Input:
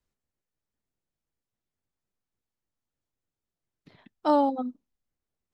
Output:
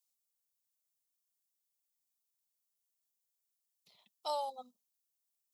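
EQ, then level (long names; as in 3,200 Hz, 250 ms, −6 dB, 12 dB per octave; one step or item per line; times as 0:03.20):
first difference
parametric band 210 Hz +10.5 dB 0.79 octaves
phaser with its sweep stopped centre 680 Hz, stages 4
+7.0 dB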